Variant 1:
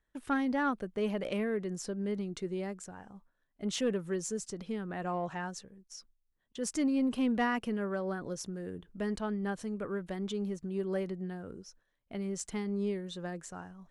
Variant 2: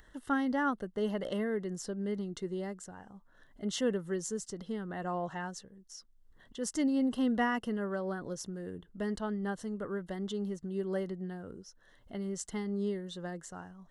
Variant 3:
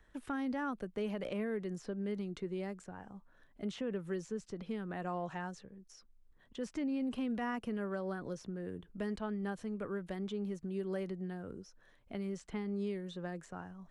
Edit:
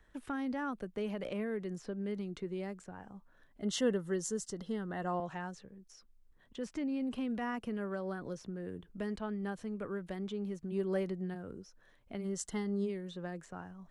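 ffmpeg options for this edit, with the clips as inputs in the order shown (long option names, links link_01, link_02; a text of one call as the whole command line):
ffmpeg -i take0.wav -i take1.wav -i take2.wav -filter_complex "[1:a]asplit=2[link_01][link_02];[2:a]asplit=4[link_03][link_04][link_05][link_06];[link_03]atrim=end=3.622[link_07];[link_01]atrim=start=3.618:end=5.202[link_08];[link_04]atrim=start=5.198:end=10.73[link_09];[0:a]atrim=start=10.71:end=11.36[link_10];[link_05]atrim=start=11.34:end=12.26[link_11];[link_02]atrim=start=12.2:end=12.9[link_12];[link_06]atrim=start=12.84[link_13];[link_07][link_08]acrossfade=duration=0.004:curve1=hsin:curve2=hsin[link_14];[link_14][link_09]acrossfade=duration=0.004:curve1=hsin:curve2=hsin[link_15];[link_15][link_10]acrossfade=duration=0.02:curve1=tri:curve2=tri[link_16];[link_16][link_11]acrossfade=duration=0.02:curve1=tri:curve2=tri[link_17];[link_17][link_12]acrossfade=duration=0.06:curve1=tri:curve2=tri[link_18];[link_18][link_13]acrossfade=duration=0.06:curve1=tri:curve2=tri" out.wav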